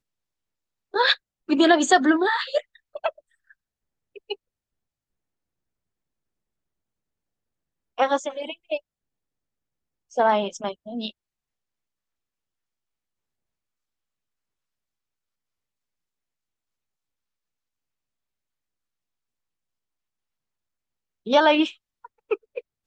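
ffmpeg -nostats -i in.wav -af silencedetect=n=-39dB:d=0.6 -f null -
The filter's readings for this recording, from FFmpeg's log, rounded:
silence_start: 0.00
silence_end: 0.94 | silence_duration: 0.94
silence_start: 3.10
silence_end: 4.16 | silence_duration: 1.06
silence_start: 4.34
silence_end: 7.98 | silence_duration: 3.64
silence_start: 8.78
silence_end: 10.13 | silence_duration: 1.34
silence_start: 11.10
silence_end: 21.26 | silence_duration: 10.16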